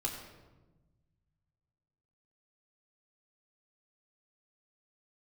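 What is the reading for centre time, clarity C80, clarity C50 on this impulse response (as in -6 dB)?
40 ms, 6.5 dB, 5.5 dB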